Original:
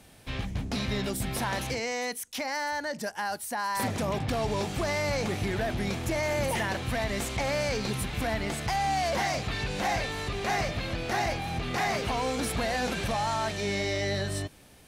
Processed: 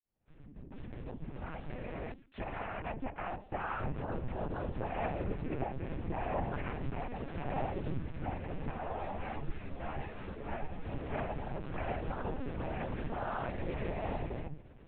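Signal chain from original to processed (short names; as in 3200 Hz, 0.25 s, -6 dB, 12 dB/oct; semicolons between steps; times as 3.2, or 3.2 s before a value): opening faded in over 4.39 s; tilt -2.5 dB/oct; notches 50/100/150/200/250/300/350 Hz; compressor 2.5:1, threshold -33 dBFS, peak gain reduction 9 dB; resonator 300 Hz, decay 0.61 s, mix 50%; noise vocoder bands 8; air absorption 320 m; LPC vocoder at 8 kHz pitch kept; 8.71–10.85 ensemble effect; gain +5 dB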